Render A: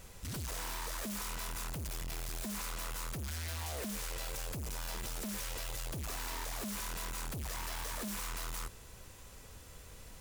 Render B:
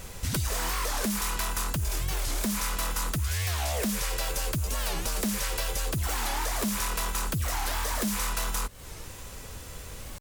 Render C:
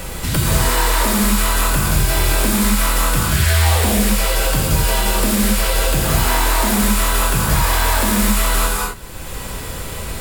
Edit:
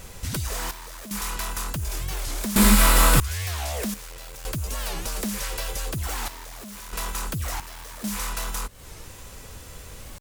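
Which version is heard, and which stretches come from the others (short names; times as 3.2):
B
0.71–1.11 from A
2.56–3.2 from C
3.94–4.45 from A
6.28–6.93 from A
7.6–8.04 from A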